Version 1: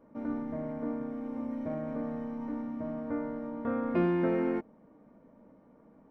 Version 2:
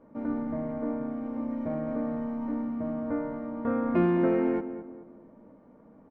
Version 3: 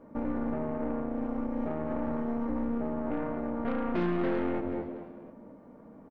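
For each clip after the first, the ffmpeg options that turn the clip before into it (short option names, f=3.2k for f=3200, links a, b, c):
-filter_complex "[0:a]lowpass=f=2.7k:p=1,asplit=2[a][b];[b]adelay=215,lowpass=f=1.6k:p=1,volume=-10.5dB,asplit=2[c][d];[d]adelay=215,lowpass=f=1.6k:p=1,volume=0.4,asplit=2[e][f];[f]adelay=215,lowpass=f=1.6k:p=1,volume=0.4,asplit=2[g][h];[h]adelay=215,lowpass=f=1.6k:p=1,volume=0.4[i];[c][e][g][i]amix=inputs=4:normalize=0[j];[a][j]amix=inputs=2:normalize=0,volume=3.5dB"
-filter_complex "[0:a]aeval=exprs='0.211*(cos(1*acos(clip(val(0)/0.211,-1,1)))-cos(1*PI/2))+0.0266*(cos(8*acos(clip(val(0)/0.211,-1,1)))-cos(8*PI/2))':c=same,asplit=4[a][b][c][d];[b]adelay=240,afreqshift=81,volume=-23dB[e];[c]adelay=480,afreqshift=162,volume=-29.4dB[f];[d]adelay=720,afreqshift=243,volume=-35.8dB[g];[a][e][f][g]amix=inputs=4:normalize=0,alimiter=level_in=1.5dB:limit=-24dB:level=0:latency=1:release=88,volume=-1.5dB,volume=3.5dB"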